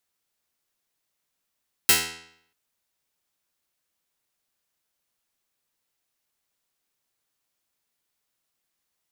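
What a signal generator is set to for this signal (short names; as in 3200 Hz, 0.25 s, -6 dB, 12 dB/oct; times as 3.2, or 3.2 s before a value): plucked string E2, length 0.64 s, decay 0.68 s, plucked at 0.14, medium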